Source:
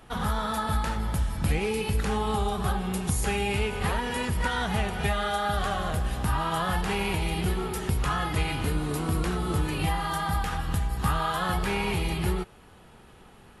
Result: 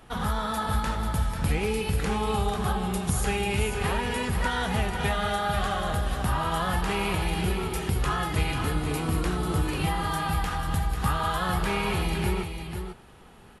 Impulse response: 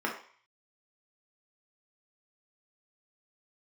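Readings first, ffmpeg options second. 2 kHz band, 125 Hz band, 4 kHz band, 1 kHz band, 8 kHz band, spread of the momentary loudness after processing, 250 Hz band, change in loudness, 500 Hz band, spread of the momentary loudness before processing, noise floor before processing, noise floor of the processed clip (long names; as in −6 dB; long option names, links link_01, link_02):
+0.5 dB, +0.5 dB, +0.5 dB, +0.5 dB, +0.5 dB, 2 LU, +0.5 dB, +0.5 dB, +0.5 dB, 2 LU, −52 dBFS, −50 dBFS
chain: -af "aecho=1:1:493:0.422"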